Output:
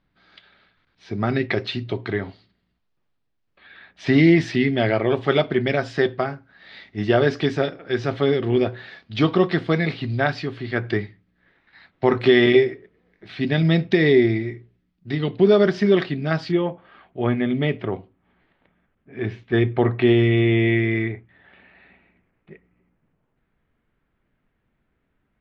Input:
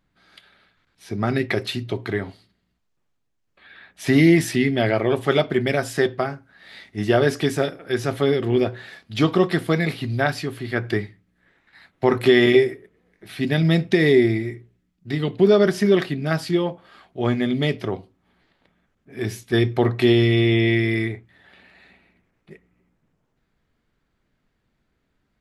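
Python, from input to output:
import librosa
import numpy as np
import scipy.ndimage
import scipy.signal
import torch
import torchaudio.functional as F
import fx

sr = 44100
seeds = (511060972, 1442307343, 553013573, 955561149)

y = fx.lowpass(x, sr, hz=fx.steps((0.0, 4800.0), (16.52, 3000.0)), slope=24)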